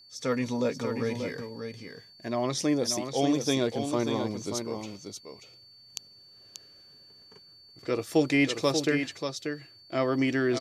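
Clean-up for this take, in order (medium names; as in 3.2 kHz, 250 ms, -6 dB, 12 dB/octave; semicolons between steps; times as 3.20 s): band-stop 4.5 kHz, Q 30; inverse comb 586 ms -7 dB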